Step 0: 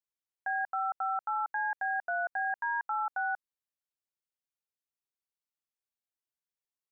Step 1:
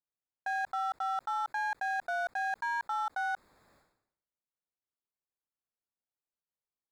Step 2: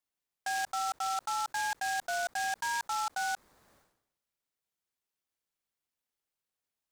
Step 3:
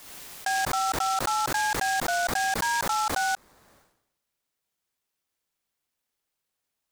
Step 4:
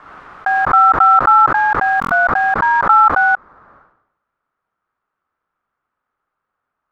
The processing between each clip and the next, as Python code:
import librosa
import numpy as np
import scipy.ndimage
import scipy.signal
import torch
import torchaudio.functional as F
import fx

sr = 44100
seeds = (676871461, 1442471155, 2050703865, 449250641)

y1 = fx.wiener(x, sr, points=15)
y1 = fx.sustainer(y1, sr, db_per_s=77.0)
y2 = fx.high_shelf(y1, sr, hz=8400.0, db=11.5)
y2 = fx.noise_mod_delay(y2, sr, seeds[0], noise_hz=5200.0, depth_ms=0.048)
y3 = fx.pre_swell(y2, sr, db_per_s=49.0)
y3 = y3 * 10.0 ** (6.5 / 20.0)
y4 = fx.lowpass_res(y3, sr, hz=1300.0, q=4.5)
y4 = fx.buffer_glitch(y4, sr, at_s=(2.0,), block=1024, repeats=4)
y4 = y4 * 10.0 ** (8.0 / 20.0)